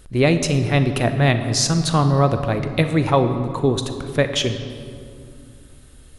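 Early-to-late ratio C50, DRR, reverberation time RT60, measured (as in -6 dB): 9.0 dB, 8.0 dB, 2.5 s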